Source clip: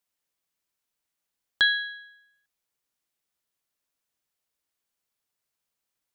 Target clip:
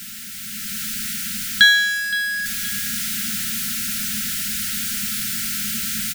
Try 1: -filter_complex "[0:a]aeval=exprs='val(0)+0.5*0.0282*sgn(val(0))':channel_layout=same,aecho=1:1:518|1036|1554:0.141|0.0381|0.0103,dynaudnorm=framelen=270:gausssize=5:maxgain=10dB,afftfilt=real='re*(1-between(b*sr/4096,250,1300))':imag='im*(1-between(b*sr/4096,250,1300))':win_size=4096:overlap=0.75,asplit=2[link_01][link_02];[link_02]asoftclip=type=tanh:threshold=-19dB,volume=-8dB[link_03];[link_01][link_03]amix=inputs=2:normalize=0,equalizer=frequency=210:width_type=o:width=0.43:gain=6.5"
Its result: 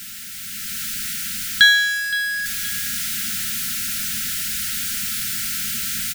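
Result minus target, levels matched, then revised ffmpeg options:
250 Hz band −6.5 dB
-filter_complex "[0:a]aeval=exprs='val(0)+0.5*0.0282*sgn(val(0))':channel_layout=same,aecho=1:1:518|1036|1554:0.141|0.0381|0.0103,dynaudnorm=framelen=270:gausssize=5:maxgain=10dB,afftfilt=real='re*(1-between(b*sr/4096,250,1300))':imag='im*(1-between(b*sr/4096,250,1300))':win_size=4096:overlap=0.75,asplit=2[link_01][link_02];[link_02]asoftclip=type=tanh:threshold=-19dB,volume=-8dB[link_03];[link_01][link_03]amix=inputs=2:normalize=0,equalizer=frequency=210:width_type=o:width=0.43:gain=15"

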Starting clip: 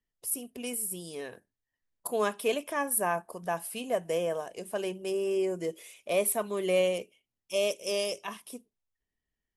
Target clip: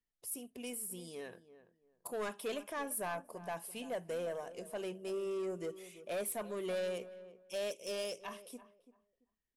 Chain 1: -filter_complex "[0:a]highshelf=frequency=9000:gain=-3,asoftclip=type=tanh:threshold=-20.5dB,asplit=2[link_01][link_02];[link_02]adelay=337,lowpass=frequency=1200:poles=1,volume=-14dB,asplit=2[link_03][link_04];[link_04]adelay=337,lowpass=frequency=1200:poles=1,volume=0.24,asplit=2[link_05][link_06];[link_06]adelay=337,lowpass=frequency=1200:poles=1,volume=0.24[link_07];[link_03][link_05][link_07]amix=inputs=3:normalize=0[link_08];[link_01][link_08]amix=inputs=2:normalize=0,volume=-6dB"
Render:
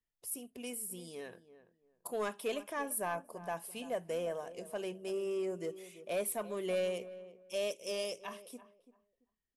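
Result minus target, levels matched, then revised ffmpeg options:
soft clipping: distortion −7 dB
-filter_complex "[0:a]highshelf=frequency=9000:gain=-3,asoftclip=type=tanh:threshold=-27dB,asplit=2[link_01][link_02];[link_02]adelay=337,lowpass=frequency=1200:poles=1,volume=-14dB,asplit=2[link_03][link_04];[link_04]adelay=337,lowpass=frequency=1200:poles=1,volume=0.24,asplit=2[link_05][link_06];[link_06]adelay=337,lowpass=frequency=1200:poles=1,volume=0.24[link_07];[link_03][link_05][link_07]amix=inputs=3:normalize=0[link_08];[link_01][link_08]amix=inputs=2:normalize=0,volume=-6dB"

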